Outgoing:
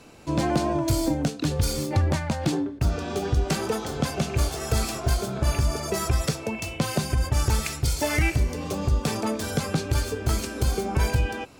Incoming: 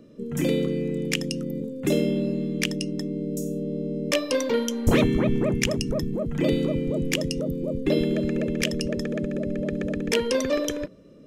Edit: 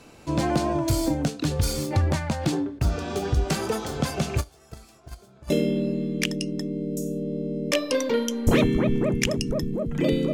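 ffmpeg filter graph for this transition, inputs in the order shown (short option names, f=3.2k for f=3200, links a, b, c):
-filter_complex "[0:a]asplit=3[a][b][c];[a]afade=t=out:st=4.4:d=0.02[d];[b]agate=range=-23dB:threshold=-18dB:ratio=16:release=100:detection=peak,afade=t=in:st=4.4:d=0.02,afade=t=out:st=5.5:d=0.02[e];[c]afade=t=in:st=5.5:d=0.02[f];[d][e][f]amix=inputs=3:normalize=0,apad=whole_dur=10.33,atrim=end=10.33,atrim=end=5.502[g];[1:a]atrim=start=1.898:end=6.73[h];[g][h]acrossfade=d=0.004:c1=hsin:c2=hsin"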